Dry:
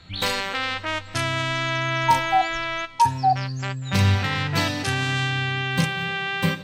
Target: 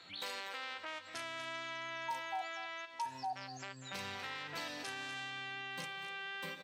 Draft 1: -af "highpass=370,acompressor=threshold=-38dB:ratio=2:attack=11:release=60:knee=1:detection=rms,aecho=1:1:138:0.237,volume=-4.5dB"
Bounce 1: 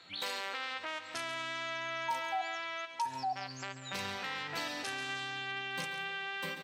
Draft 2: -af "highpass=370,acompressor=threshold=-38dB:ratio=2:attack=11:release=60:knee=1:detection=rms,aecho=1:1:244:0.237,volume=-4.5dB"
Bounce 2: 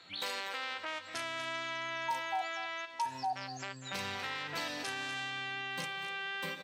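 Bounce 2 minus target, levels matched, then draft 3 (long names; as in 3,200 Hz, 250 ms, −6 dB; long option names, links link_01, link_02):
downward compressor: peak gain reduction −5 dB
-af "highpass=370,acompressor=threshold=-47.5dB:ratio=2:attack=11:release=60:knee=1:detection=rms,aecho=1:1:244:0.237,volume=-4.5dB"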